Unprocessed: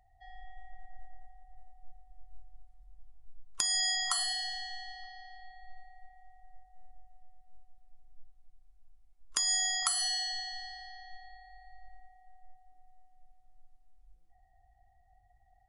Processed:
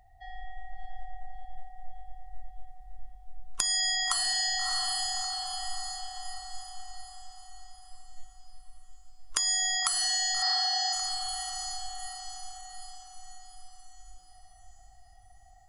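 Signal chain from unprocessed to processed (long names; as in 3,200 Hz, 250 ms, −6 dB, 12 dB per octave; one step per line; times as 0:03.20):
feedback delay with all-pass diffusion 648 ms, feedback 50%, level −6 dB
downward compressor 3 to 1, threshold −34 dBFS, peak gain reduction 7 dB
0:10.42–0:10.93: loudspeaker in its box 330–5,800 Hz, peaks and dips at 420 Hz +9 dB, 810 Hz +8 dB, 1,200 Hz −4 dB, 1,700 Hz +5 dB, 2,600 Hz −5 dB, 5,200 Hz +10 dB
level +7.5 dB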